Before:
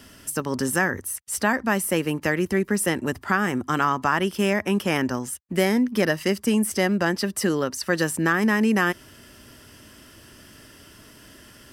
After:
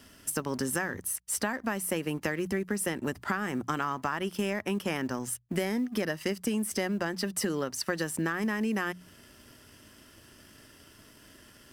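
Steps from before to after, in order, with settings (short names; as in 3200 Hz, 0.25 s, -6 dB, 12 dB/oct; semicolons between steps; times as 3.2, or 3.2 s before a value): G.711 law mismatch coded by A; notches 60/120/180 Hz; compressor, threshold -27 dBFS, peak gain reduction 11.5 dB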